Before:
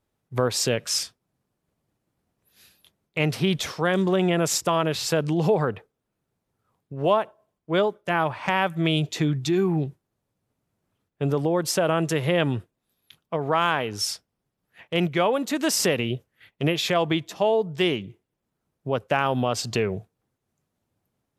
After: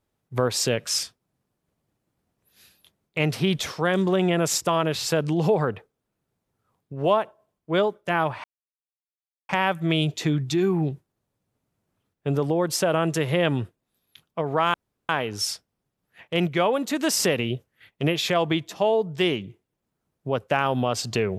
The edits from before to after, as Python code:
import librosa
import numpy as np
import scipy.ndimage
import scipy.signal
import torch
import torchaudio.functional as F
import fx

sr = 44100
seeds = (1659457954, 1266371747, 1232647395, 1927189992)

y = fx.edit(x, sr, fx.insert_silence(at_s=8.44, length_s=1.05),
    fx.insert_room_tone(at_s=13.69, length_s=0.35), tone=tone)